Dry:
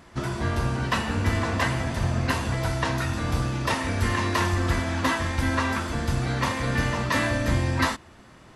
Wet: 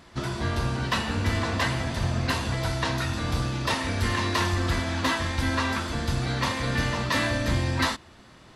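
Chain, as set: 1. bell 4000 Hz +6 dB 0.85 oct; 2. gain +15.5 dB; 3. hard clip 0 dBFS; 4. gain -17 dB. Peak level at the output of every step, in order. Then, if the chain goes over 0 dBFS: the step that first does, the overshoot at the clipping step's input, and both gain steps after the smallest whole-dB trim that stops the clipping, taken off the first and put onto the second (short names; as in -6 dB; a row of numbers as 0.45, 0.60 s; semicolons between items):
-8.0, +7.5, 0.0, -17.0 dBFS; step 2, 7.5 dB; step 2 +7.5 dB, step 4 -9 dB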